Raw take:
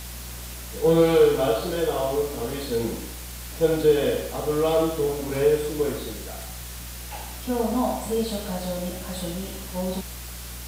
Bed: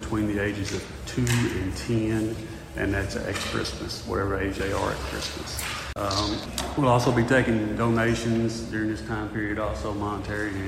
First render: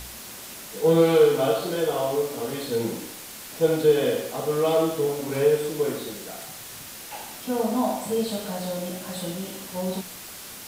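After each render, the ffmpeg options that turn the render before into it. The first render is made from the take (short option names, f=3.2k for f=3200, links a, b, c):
-af "bandreject=f=60:t=h:w=4,bandreject=f=120:t=h:w=4,bandreject=f=180:t=h:w=4,bandreject=f=240:t=h:w=4,bandreject=f=300:t=h:w=4"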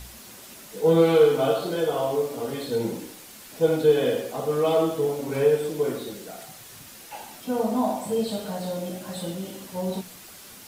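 -af "afftdn=nr=6:nf=-40"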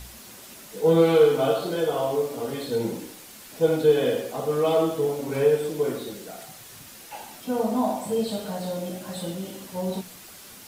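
-af anull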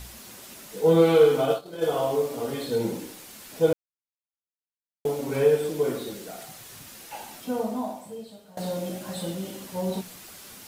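-filter_complex "[0:a]asplit=3[a][b][c];[a]afade=t=out:st=1.41:d=0.02[d];[b]agate=range=-33dB:threshold=-20dB:ratio=3:release=100:detection=peak,afade=t=in:st=1.41:d=0.02,afade=t=out:st=1.81:d=0.02[e];[c]afade=t=in:st=1.81:d=0.02[f];[d][e][f]amix=inputs=3:normalize=0,asplit=4[g][h][i][j];[g]atrim=end=3.73,asetpts=PTS-STARTPTS,afade=t=out:st=3.726:d=0.004:c=hsin[k];[h]atrim=start=3.73:end=5.05,asetpts=PTS-STARTPTS,volume=0[l];[i]atrim=start=5.05:end=8.57,asetpts=PTS-STARTPTS,afade=t=in:d=0.004:c=hsin,afade=t=out:st=2.33:d=1.19:c=qua:silence=0.105925[m];[j]atrim=start=8.57,asetpts=PTS-STARTPTS,afade=t=in:d=0.004:c=hsin:silence=0.105925[n];[k][l][m][n]concat=n=4:v=0:a=1"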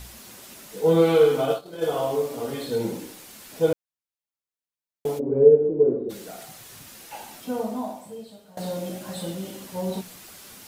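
-filter_complex "[0:a]asplit=3[a][b][c];[a]afade=t=out:st=5.18:d=0.02[d];[b]lowpass=f=420:t=q:w=2.3,afade=t=in:st=5.18:d=0.02,afade=t=out:st=6.09:d=0.02[e];[c]afade=t=in:st=6.09:d=0.02[f];[d][e][f]amix=inputs=3:normalize=0"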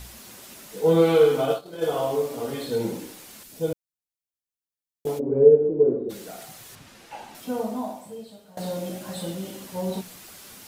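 -filter_complex "[0:a]asettb=1/sr,asplit=3[a][b][c];[a]atrim=end=3.434[d];[b]atrim=start=3.43:end=5.07,asetpts=PTS-STARTPTS,afade=t=in:d=0.004:c=qsin,afade=t=out:st=1.636:d=0.004:c=qsin,equalizer=f=1.2k:w=0.35:g=-9.5[e];[c]atrim=start=5.066[f];[d][e]acrossfade=d=0.004:c1=hsin:c2=qsin[g];[g][f]acrossfade=d=0.004:c1=qsin:c2=hsin,asettb=1/sr,asplit=3[h][i][j];[h]atrim=end=6.754[k];[i]atrim=start=6.75:end=7.35,asetpts=PTS-STARTPTS,afade=t=in:d=0.004:c=qsin,afade=t=out:st=0.596:d=0.004:c=qsin,aemphasis=mode=reproduction:type=50fm[l];[j]atrim=start=7.346[m];[k][l]acrossfade=d=0.004:c1=hsin:c2=qsin[n];[n][m]acrossfade=d=0.004:c1=qsin:c2=hsin"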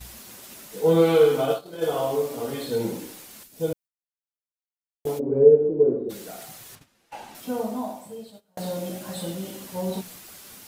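-af "agate=range=-17dB:threshold=-45dB:ratio=16:detection=peak,highshelf=f=11k:g=4"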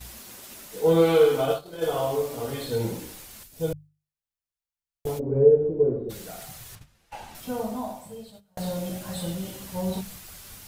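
-af "bandreject=f=50:t=h:w=6,bandreject=f=100:t=h:w=6,bandreject=f=150:t=h:w=6,bandreject=f=200:t=h:w=6,asubboost=boost=7.5:cutoff=100"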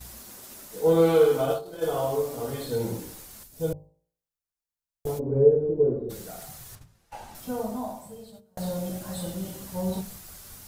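-af "equalizer=f=2.7k:w=1:g=-6,bandreject=f=56.3:t=h:w=4,bandreject=f=112.6:t=h:w=4,bandreject=f=168.9:t=h:w=4,bandreject=f=225.2:t=h:w=4,bandreject=f=281.5:t=h:w=4,bandreject=f=337.8:t=h:w=4,bandreject=f=394.1:t=h:w=4,bandreject=f=450.4:t=h:w=4,bandreject=f=506.7:t=h:w=4,bandreject=f=563:t=h:w=4,bandreject=f=619.3:t=h:w=4,bandreject=f=675.6:t=h:w=4,bandreject=f=731.9:t=h:w=4,bandreject=f=788.2:t=h:w=4,bandreject=f=844.5:t=h:w=4,bandreject=f=900.8:t=h:w=4,bandreject=f=957.1:t=h:w=4,bandreject=f=1.0134k:t=h:w=4,bandreject=f=1.0697k:t=h:w=4"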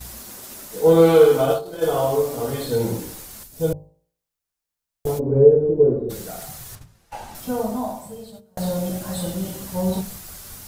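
-af "volume=6.5dB,alimiter=limit=-2dB:level=0:latency=1"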